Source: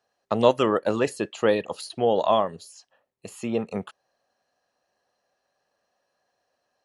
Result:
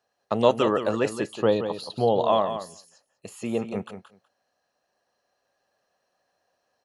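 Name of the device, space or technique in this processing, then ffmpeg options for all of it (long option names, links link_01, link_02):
ducked delay: -filter_complex "[0:a]asettb=1/sr,asplit=3[link_01][link_02][link_03];[link_01]atrim=end=1.314[link_04];[link_02]atrim=start=1.31:end=2.27,asetpts=PTS-STARTPTS,afade=type=in:duration=0.004:curve=qsin,afade=type=out:start_time=0.956:duration=0.004:curve=qsin,equalizer=frequency=125:width_type=o:width=1:gain=7,equalizer=frequency=1000:width_type=o:width=1:gain=4,equalizer=frequency=2000:width_type=o:width=1:gain=-11,equalizer=frequency=4000:width_type=o:width=1:gain=6,equalizer=frequency=8000:width_type=o:width=1:gain=-11[link_05];[link_03]atrim=start=2.266[link_06];[link_04][link_05]acrossfade=duration=0.004:curve1=hsin:curve2=qsin[link_07];[link_07][link_06]acrossfade=duration=0.004:curve1=qsin:curve2=hsin,aecho=1:1:175:0.335,asplit=3[link_08][link_09][link_10];[link_09]adelay=197,volume=-3.5dB[link_11];[link_10]apad=whole_len=318463[link_12];[link_11][link_12]sidechaincompress=threshold=-39dB:ratio=8:attack=6.9:release=1350[link_13];[link_08][link_13]amix=inputs=2:normalize=0,volume=-1dB"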